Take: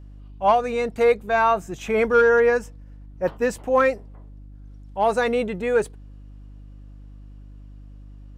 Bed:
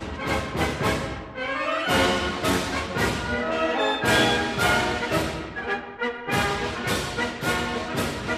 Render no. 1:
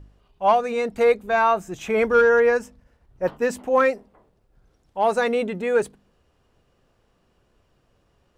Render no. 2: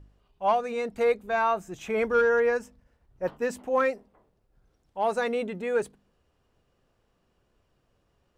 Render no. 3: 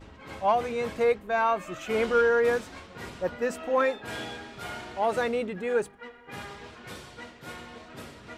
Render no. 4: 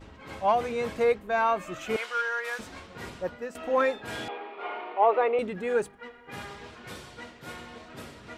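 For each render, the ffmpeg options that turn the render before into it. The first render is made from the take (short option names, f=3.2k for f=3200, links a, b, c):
-af "bandreject=f=50:t=h:w=4,bandreject=f=100:t=h:w=4,bandreject=f=150:t=h:w=4,bandreject=f=200:t=h:w=4,bandreject=f=250:t=h:w=4,bandreject=f=300:t=h:w=4"
-af "volume=-6dB"
-filter_complex "[1:a]volume=-17dB[a];[0:a][a]amix=inputs=2:normalize=0"
-filter_complex "[0:a]asettb=1/sr,asplit=3[a][b][c];[a]atrim=end=1.964[d];[b]atrim=start=1.96:end=2.59,asetpts=PTS-STARTPTS,afade=t=in:d=0.004:c=qsin,afade=t=out:st=0.626:d=0.004:c=qsin,highpass=1.2k[e];[c]atrim=start=2.586[f];[d][e]acrossfade=d=0.004:c1=hsin:c2=qsin[g];[g][f]acrossfade=d=0.004:c1=qsin:c2=hsin,asettb=1/sr,asplit=3[h][i][j];[h]atrim=end=4.284[k];[i]atrim=start=4.28:end=5.39,asetpts=PTS-STARTPTS,afade=t=in:d=0.004:c=qsin,afade=t=out:st=1.106:d=0.004:c=qsin,highpass=f=330:w=0.5412,highpass=f=330:w=1.3066,equalizer=f=420:t=q:w=4:g=7,equalizer=f=770:t=q:w=4:g=6,equalizer=f=1.1k:t=q:w=4:g=9,equalizer=f=1.6k:t=q:w=4:g=-7,equalizer=f=2.4k:t=q:w=4:g=4,lowpass=f=2.8k:w=0.5412,lowpass=f=2.8k:w=1.3066[l];[j]atrim=start=5.386[m];[k][l]acrossfade=d=0.004:c1=hsin:c2=qsin[n];[n][m]acrossfade=d=0.004:c1=qsin:c2=hsin,asplit=2[o][p];[o]atrim=end=3.55,asetpts=PTS-STARTPTS,afade=t=out:st=3.09:d=0.46:silence=0.223872[q];[p]atrim=start=3.55,asetpts=PTS-STARTPTS,afade=t=in:d=0.004:c=hsin:silence=0.223872[r];[q][r]concat=n=2:v=0:a=1"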